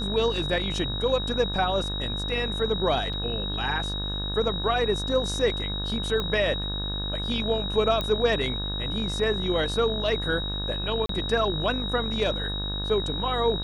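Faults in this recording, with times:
mains buzz 50 Hz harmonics 35 −32 dBFS
whistle 3,800 Hz −31 dBFS
0:03.13–0:03.14: drop-out 5.3 ms
0:06.20: click −16 dBFS
0:08.01: click −15 dBFS
0:11.06–0:11.09: drop-out 33 ms

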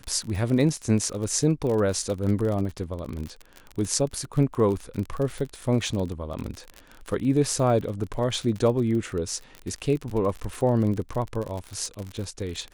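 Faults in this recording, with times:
surface crackle 42 per second −29 dBFS

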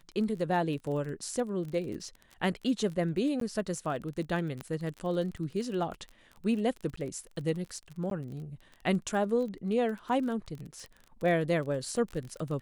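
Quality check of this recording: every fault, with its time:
surface crackle 29 per second −37 dBFS
0:03.40–0:03.41: drop-out
0:04.61: click −24 dBFS
0:06.96–0:06.97: drop-out 14 ms
0:08.10–0:08.11: drop-out 12 ms

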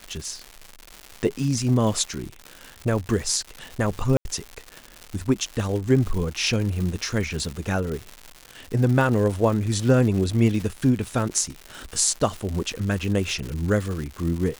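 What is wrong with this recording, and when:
surface crackle 240 per second −29 dBFS
0:04.17–0:04.25: drop-out 81 ms

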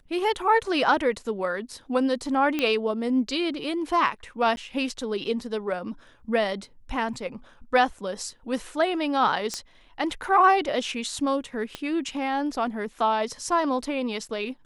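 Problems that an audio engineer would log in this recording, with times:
0:02.59: click −12 dBFS
0:04.56–0:04.57: drop-out 11 ms
0:07.14: drop-out 2.6 ms
0:09.54: click −15 dBFS
0:11.75: click −17 dBFS

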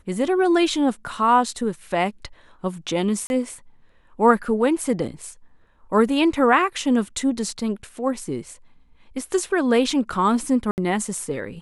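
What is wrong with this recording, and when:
0:03.27–0:03.30: drop-out 31 ms
0:10.71–0:10.78: drop-out 69 ms

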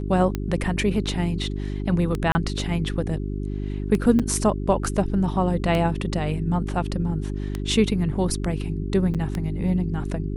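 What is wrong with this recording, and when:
mains hum 50 Hz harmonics 8 −28 dBFS
scratch tick 33 1/3 rpm −13 dBFS
0:02.32–0:02.35: drop-out 30 ms
0:04.19–0:04.20: drop-out 6.3 ms
0:09.14–0:09.15: drop-out 7 ms

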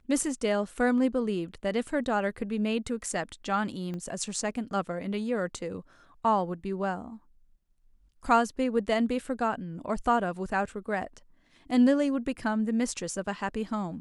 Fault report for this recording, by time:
0:03.94: click −26 dBFS

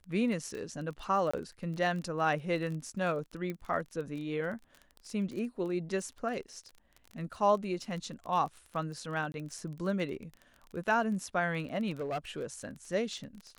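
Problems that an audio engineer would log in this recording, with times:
surface crackle 25 per second −38 dBFS
0:01.31–0:01.33: drop-out 25 ms
0:03.50: click −25 dBFS
0:09.32–0:09.34: drop-out 21 ms
0:11.90–0:12.69: clipping −31 dBFS

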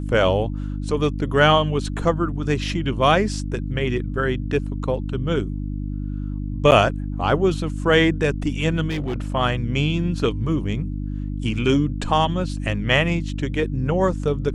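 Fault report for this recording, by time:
mains hum 50 Hz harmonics 6 −27 dBFS
0:06.71–0:06.72: drop-out 8.6 ms
0:08.89–0:09.35: clipping −21 dBFS

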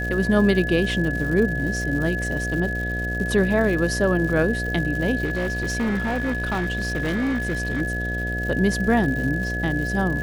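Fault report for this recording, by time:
mains buzz 60 Hz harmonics 12 −28 dBFS
surface crackle 180 per second −30 dBFS
whistle 1,700 Hz −27 dBFS
0:05.24–0:07.82: clipping −20 dBFS

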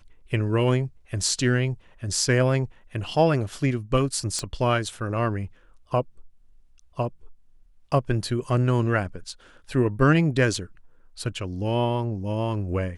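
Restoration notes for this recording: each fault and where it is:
0:04.39: click −14 dBFS

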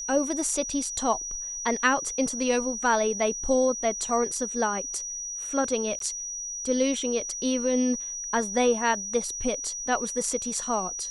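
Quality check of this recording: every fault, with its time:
whistle 5,800 Hz −32 dBFS
0:05.99–0:06.00: drop-out 13 ms

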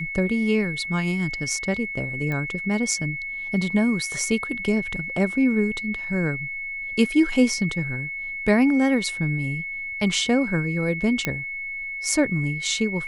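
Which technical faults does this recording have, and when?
whistle 2,200 Hz −29 dBFS
0:02.32: click −17 dBFS
0:11.25: click −9 dBFS

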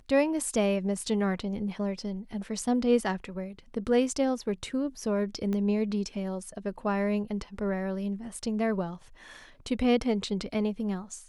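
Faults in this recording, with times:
0:05.53: click −21 dBFS

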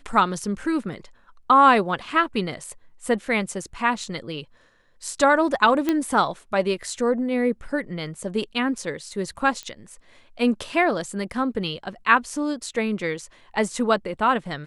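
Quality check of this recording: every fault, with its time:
0:05.89: click −9 dBFS
0:09.63: click −19 dBFS

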